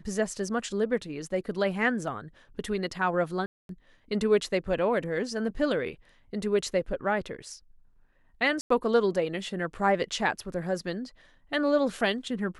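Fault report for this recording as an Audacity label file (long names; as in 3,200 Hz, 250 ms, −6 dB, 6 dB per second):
3.460000	3.690000	drop-out 232 ms
8.610000	8.700000	drop-out 94 ms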